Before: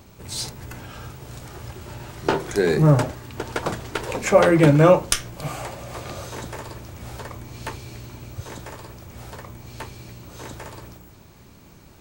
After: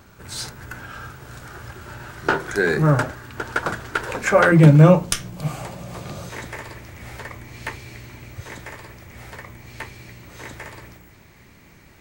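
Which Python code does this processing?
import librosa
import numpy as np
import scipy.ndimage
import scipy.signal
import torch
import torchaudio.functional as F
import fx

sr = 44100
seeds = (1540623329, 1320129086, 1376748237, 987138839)

y = fx.peak_eq(x, sr, hz=fx.steps((0.0, 1500.0), (4.52, 170.0), (6.3, 2000.0)), db=12.0, octaves=0.62)
y = y * librosa.db_to_amplitude(-2.0)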